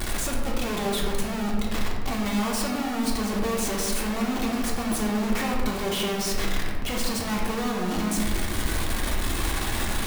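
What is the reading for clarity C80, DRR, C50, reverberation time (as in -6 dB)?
4.5 dB, -3.0 dB, 2.0 dB, 1.8 s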